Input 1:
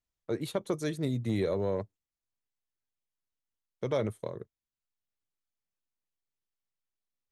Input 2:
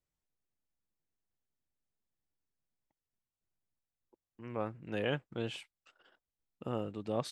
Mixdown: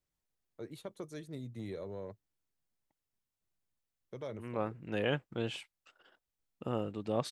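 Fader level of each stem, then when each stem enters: −12.5, +1.5 decibels; 0.30, 0.00 seconds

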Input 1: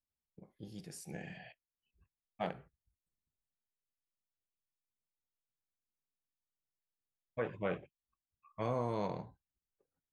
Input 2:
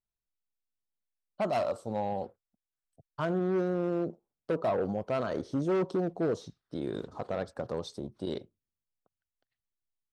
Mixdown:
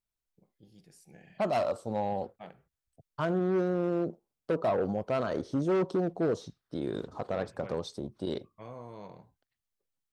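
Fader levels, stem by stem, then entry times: −9.5, +1.0 decibels; 0.00, 0.00 seconds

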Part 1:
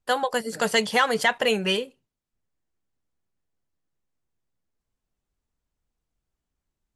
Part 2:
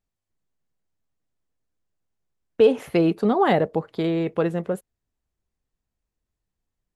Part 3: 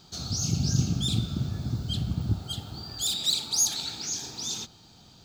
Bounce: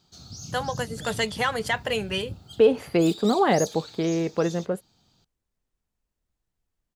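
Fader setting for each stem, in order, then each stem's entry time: −4.5, −1.5, −11.0 decibels; 0.45, 0.00, 0.00 seconds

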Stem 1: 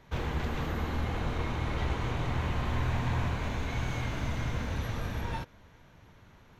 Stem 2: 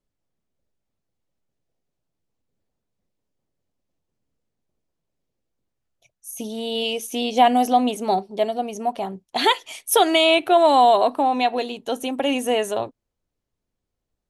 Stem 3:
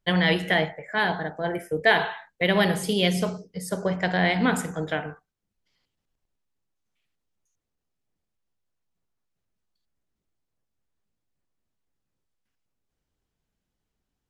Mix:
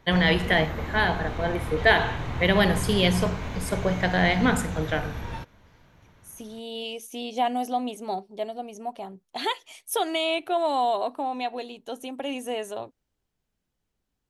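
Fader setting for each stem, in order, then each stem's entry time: 0.0, −9.5, +0.5 decibels; 0.00, 0.00, 0.00 seconds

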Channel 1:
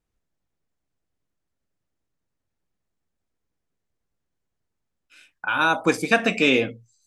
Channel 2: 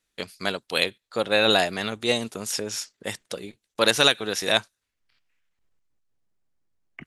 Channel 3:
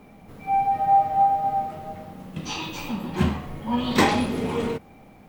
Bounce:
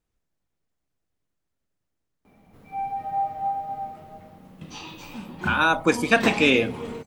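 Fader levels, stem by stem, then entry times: 0.0 dB, muted, −8.0 dB; 0.00 s, muted, 2.25 s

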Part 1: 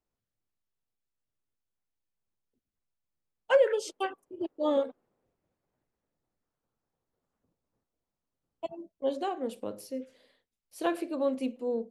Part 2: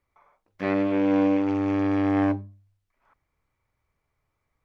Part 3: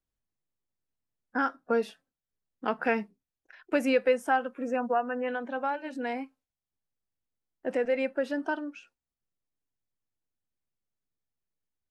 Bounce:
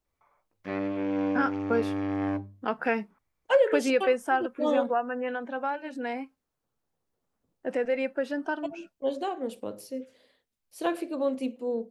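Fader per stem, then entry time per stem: +1.0, −7.0, 0.0 decibels; 0.00, 0.05, 0.00 seconds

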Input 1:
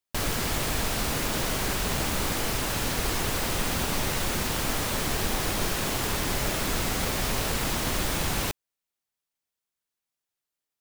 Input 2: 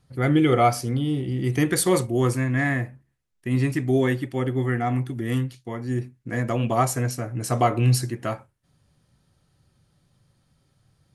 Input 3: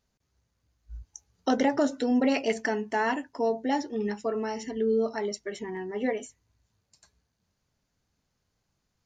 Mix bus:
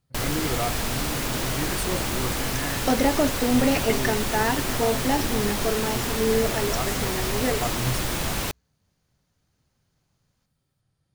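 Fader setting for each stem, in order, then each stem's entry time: +0.5, −10.5, +2.5 decibels; 0.00, 0.00, 1.40 seconds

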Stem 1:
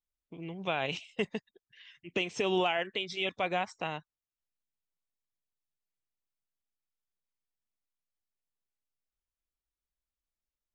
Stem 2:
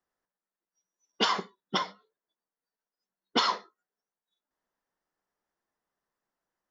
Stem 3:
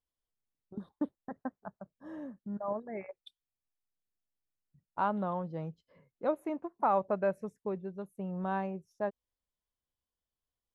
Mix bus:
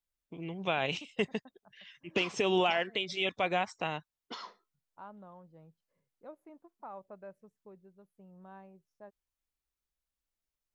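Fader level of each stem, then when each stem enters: +1.0, −18.5, −18.0 decibels; 0.00, 0.95, 0.00 seconds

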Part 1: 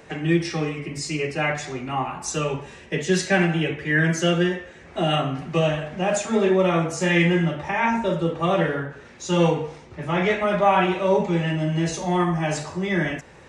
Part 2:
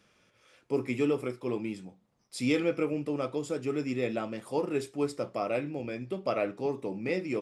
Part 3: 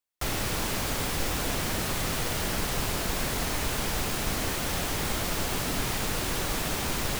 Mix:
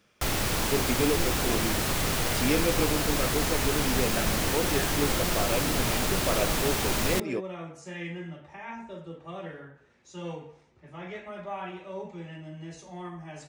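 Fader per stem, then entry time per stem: −18.5, +0.5, +2.0 decibels; 0.85, 0.00, 0.00 seconds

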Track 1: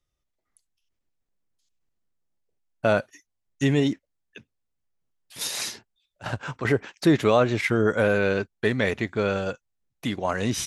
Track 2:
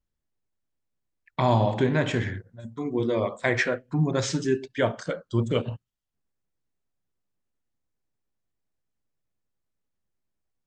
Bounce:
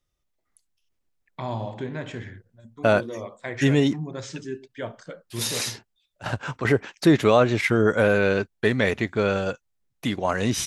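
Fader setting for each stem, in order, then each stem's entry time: +2.0, −9.0 decibels; 0.00, 0.00 seconds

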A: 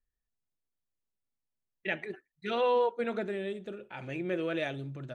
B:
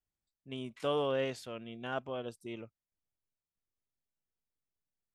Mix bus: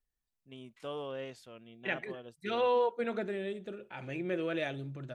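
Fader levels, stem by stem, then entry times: −1.5, −8.0 decibels; 0.00, 0.00 seconds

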